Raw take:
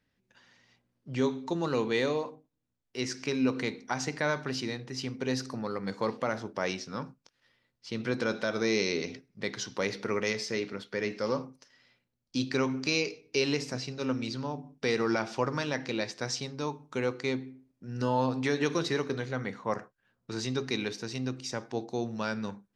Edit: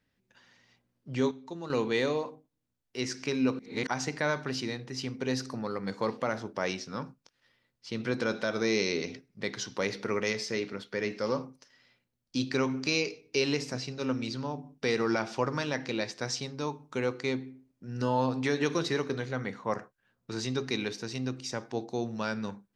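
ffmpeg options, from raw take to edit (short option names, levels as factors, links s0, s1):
-filter_complex "[0:a]asplit=5[s0][s1][s2][s3][s4];[s0]atrim=end=1.312[s5];[s1]atrim=start=1.308:end=1.702,asetpts=PTS-STARTPTS,volume=0.355[s6];[s2]atrim=start=1.698:end=3.592[s7];[s3]atrim=start=3.588:end=3.872,asetpts=PTS-STARTPTS,areverse[s8];[s4]atrim=start=3.868[s9];[s5][s6]acrossfade=d=0.004:c1=hsin:c2=hsin[s10];[s10][s7]acrossfade=d=0.004:c1=hsin:c2=hsin[s11];[s11][s8]acrossfade=d=0.004:c1=hsin:c2=hsin[s12];[s12][s9]acrossfade=d=0.004:c1=hsin:c2=hsin"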